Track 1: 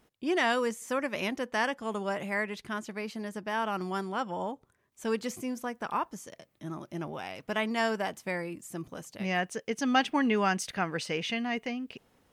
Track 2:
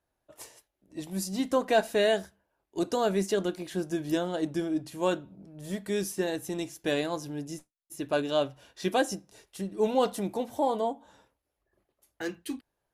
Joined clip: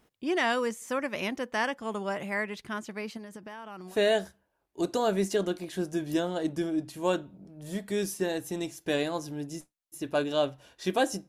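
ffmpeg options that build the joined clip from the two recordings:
-filter_complex "[0:a]asettb=1/sr,asplit=3[a][b][c];[a]atrim=end=3.174[d];[b]atrim=start=3.17:end=3.97,asetpts=PTS-STARTPTS,afade=t=in:d=0.004:c=qsin,afade=t=out:st=0.796:d=0.004:c=qsin,acompressor=threshold=-38dB:ratio=16:attack=3.2:release=140:knee=1:detection=peak[e];[c]atrim=start=3.966[f];[d][e]acrossfade=d=0.004:c1=hsin:c2=qsin[g];[g][f]acrossfade=d=0.004:c1=qsin:c2=hsin,apad=whole_dur=11.28,atrim=end=11.28,atrim=end=3.97,asetpts=PTS-STARTPTS[h];[1:a]atrim=start=1.85:end=9.26,asetpts=PTS-STARTPTS[i];[h][i]acrossfade=d=0.1:c1=tri:c2=tri"

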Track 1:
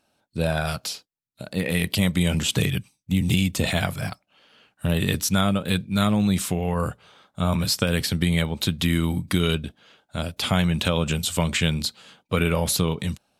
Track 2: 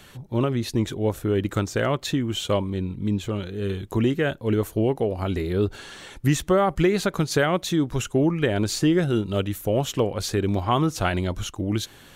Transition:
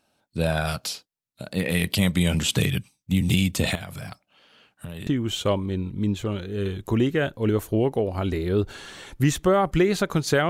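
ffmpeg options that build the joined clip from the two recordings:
-filter_complex "[0:a]asettb=1/sr,asplit=3[a][b][c];[a]atrim=end=3.754[d];[b]atrim=start=3.75:end=5.07,asetpts=PTS-STARTPTS,afade=t=in:d=0.004:c=qsin,afade=t=out:st=1.316:d=0.004:c=qsin,acompressor=threshold=-31dB:ratio=12:attack=3.2:release=140:knee=1:detection=peak[e];[c]atrim=start=5.066[f];[d][e]acrossfade=d=0.004:c1=hsin:c2=qsin[g];[g][f]acrossfade=d=0.004:c1=qsin:c2=hsin,apad=whole_dur=10.49,atrim=end=10.49,atrim=end=5.072[h];[1:a]atrim=start=2.108:end=7.53[i];[h][i]acrossfade=d=0.004:c1=hsin:c2=hsin"

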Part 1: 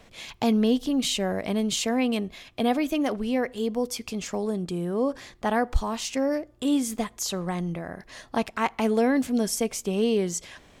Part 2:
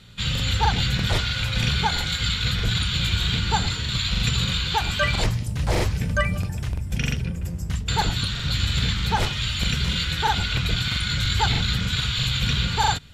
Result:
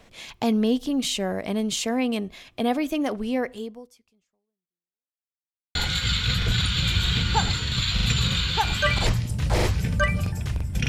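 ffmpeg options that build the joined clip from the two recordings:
-filter_complex "[0:a]apad=whole_dur=10.88,atrim=end=10.88,asplit=2[a][b];[a]atrim=end=5.25,asetpts=PTS-STARTPTS,afade=t=out:st=3.53:d=1.72:c=exp[c];[b]atrim=start=5.25:end=5.75,asetpts=PTS-STARTPTS,volume=0[d];[1:a]atrim=start=1.92:end=7.05,asetpts=PTS-STARTPTS,afade=t=in:d=0.004:c=hsin[e];[c][d][e]concat=n=3:v=0:a=1"

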